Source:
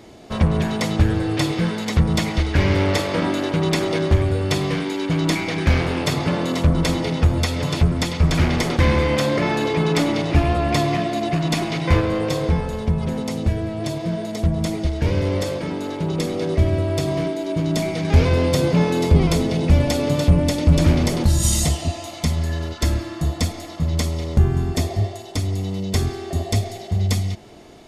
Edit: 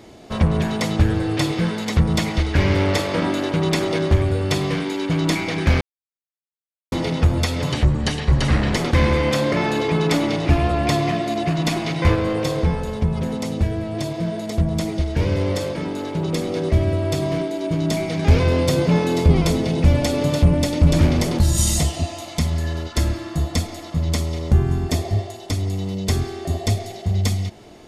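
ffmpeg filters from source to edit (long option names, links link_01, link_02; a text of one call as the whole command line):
ffmpeg -i in.wav -filter_complex "[0:a]asplit=5[link_01][link_02][link_03][link_04][link_05];[link_01]atrim=end=5.81,asetpts=PTS-STARTPTS,afade=type=out:start_time=5.806:duration=0.004:curve=hsin[link_06];[link_02]atrim=start=5.81:end=6.92,asetpts=PTS-STARTPTS,volume=0[link_07];[link_03]atrim=start=6.92:end=7.724,asetpts=PTS-STARTPTS,afade=type=in:duration=0.004:curve=hsin[link_08];[link_04]atrim=start=7.72:end=8.61,asetpts=PTS-STARTPTS,asetrate=37926,aresample=44100,atrim=end_sample=45638,asetpts=PTS-STARTPTS[link_09];[link_05]atrim=start=8.606[link_10];[link_06][link_07][link_08]concat=n=3:v=0:a=1[link_11];[link_11][link_09]acrossfade=duration=0.004:curve1=hsin:curve2=hsin[link_12];[link_12][link_10]acrossfade=duration=0.004:curve1=hsin:curve2=hsin" out.wav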